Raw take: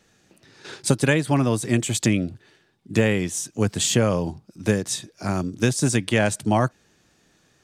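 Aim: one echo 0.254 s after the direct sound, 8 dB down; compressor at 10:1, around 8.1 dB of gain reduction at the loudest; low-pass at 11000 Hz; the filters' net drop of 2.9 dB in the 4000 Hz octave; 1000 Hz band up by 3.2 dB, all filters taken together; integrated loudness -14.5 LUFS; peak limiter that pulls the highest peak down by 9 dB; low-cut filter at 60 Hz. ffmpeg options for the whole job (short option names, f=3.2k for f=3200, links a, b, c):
-af "highpass=60,lowpass=11k,equalizer=f=1k:t=o:g=4.5,equalizer=f=4k:t=o:g=-4,acompressor=threshold=-22dB:ratio=10,alimiter=limit=-19.5dB:level=0:latency=1,aecho=1:1:254:0.398,volume=16dB"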